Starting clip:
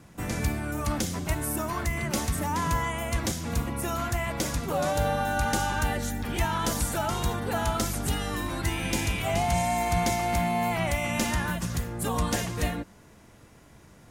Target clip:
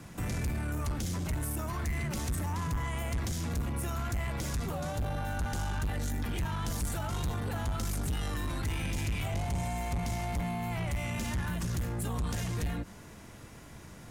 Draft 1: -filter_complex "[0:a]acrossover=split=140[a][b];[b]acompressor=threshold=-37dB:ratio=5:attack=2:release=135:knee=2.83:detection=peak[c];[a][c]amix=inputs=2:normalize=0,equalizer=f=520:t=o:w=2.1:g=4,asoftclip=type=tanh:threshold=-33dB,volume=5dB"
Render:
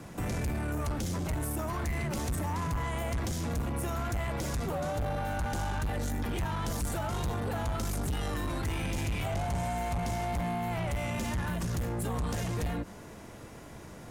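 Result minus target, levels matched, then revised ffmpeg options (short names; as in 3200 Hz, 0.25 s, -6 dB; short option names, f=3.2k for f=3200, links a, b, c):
500 Hz band +4.0 dB
-filter_complex "[0:a]acrossover=split=140[a][b];[b]acompressor=threshold=-37dB:ratio=5:attack=2:release=135:knee=2.83:detection=peak[c];[a][c]amix=inputs=2:normalize=0,equalizer=f=520:t=o:w=2.1:g=-2.5,asoftclip=type=tanh:threshold=-33dB,volume=5dB"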